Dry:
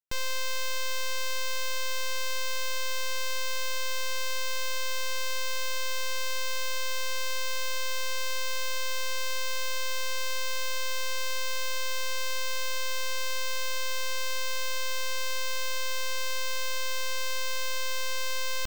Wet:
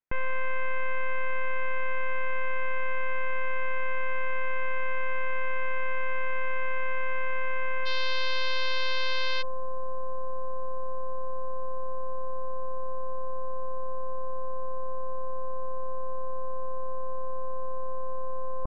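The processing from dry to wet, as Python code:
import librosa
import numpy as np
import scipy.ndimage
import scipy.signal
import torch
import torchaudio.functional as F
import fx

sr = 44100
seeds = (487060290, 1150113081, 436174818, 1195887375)

y = fx.steep_lowpass(x, sr, hz=fx.steps((0.0, 2400.0), (7.85, 4700.0), (9.41, 1100.0)), slope=48)
y = y * 10.0 ** (4.5 / 20.0)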